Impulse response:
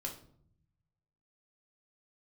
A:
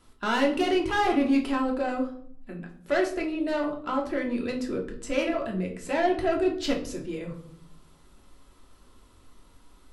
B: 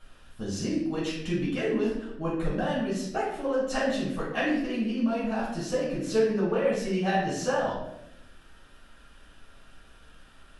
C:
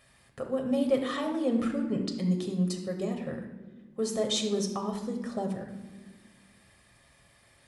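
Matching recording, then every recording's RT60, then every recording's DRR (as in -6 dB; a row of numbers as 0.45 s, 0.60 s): A; 0.60 s, 0.85 s, no single decay rate; -0.5 dB, -9.0 dB, 2.5 dB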